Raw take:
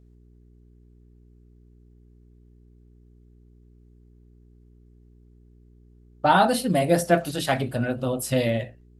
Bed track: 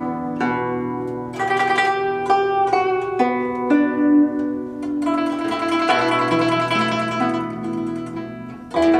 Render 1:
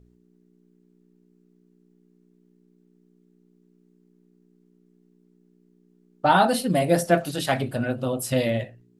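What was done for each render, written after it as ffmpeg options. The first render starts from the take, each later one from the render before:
-af "bandreject=f=60:t=h:w=4,bandreject=f=120:t=h:w=4"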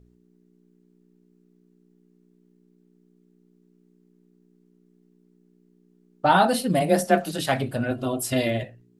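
-filter_complex "[0:a]asplit=3[s0][s1][s2];[s0]afade=t=out:st=6.79:d=0.02[s3];[s1]afreqshift=23,afade=t=in:st=6.79:d=0.02,afade=t=out:st=7.37:d=0.02[s4];[s2]afade=t=in:st=7.37:d=0.02[s5];[s3][s4][s5]amix=inputs=3:normalize=0,asettb=1/sr,asplit=3[s6][s7][s8];[s6]atrim=end=7.914[s9];[s7]atrim=start=7.91:end=8.63,asetpts=PTS-STARTPTS,afade=t=in:d=0.004:c=qsin,afade=t=out:st=0.716:d=0.004:c=qsin,aecho=1:1:2.9:0.65,atrim=end_sample=31752[s10];[s8]atrim=start=8.626[s11];[s9][s10]acrossfade=d=0.004:c1=hsin:c2=qsin[s12];[s12][s11]acrossfade=d=0.004:c1=qsin:c2=hsin"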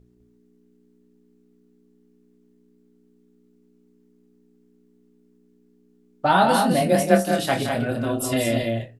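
-filter_complex "[0:a]asplit=2[s0][s1];[s1]adelay=26,volume=0.398[s2];[s0][s2]amix=inputs=2:normalize=0,aecho=1:1:169.1|204.1:0.316|0.562"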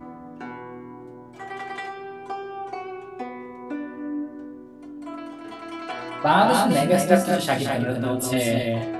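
-filter_complex "[1:a]volume=0.168[s0];[0:a][s0]amix=inputs=2:normalize=0"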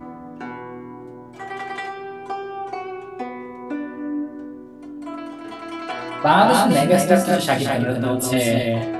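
-af "volume=1.5,alimiter=limit=0.794:level=0:latency=1"

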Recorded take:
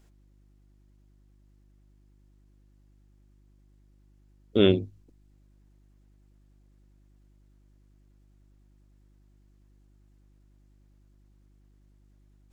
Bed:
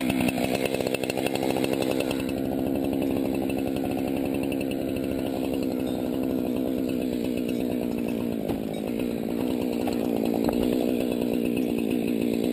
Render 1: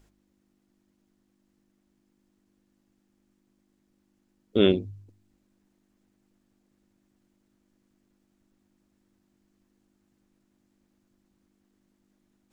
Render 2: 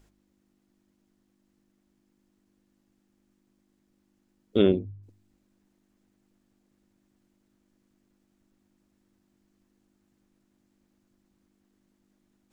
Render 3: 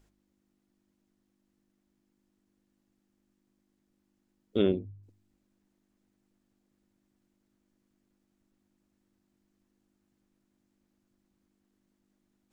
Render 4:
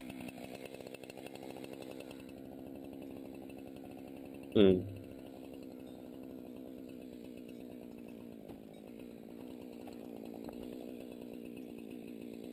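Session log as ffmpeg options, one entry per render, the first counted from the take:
-af "bandreject=f=50:t=h:w=4,bandreject=f=100:t=h:w=4,bandreject=f=150:t=h:w=4"
-filter_complex "[0:a]asplit=3[s0][s1][s2];[s0]afade=t=out:st=4.61:d=0.02[s3];[s1]lowpass=f=1000:p=1,afade=t=in:st=4.61:d=0.02,afade=t=out:st=5.02:d=0.02[s4];[s2]afade=t=in:st=5.02:d=0.02[s5];[s3][s4][s5]amix=inputs=3:normalize=0"
-af "volume=0.562"
-filter_complex "[1:a]volume=0.0794[s0];[0:a][s0]amix=inputs=2:normalize=0"

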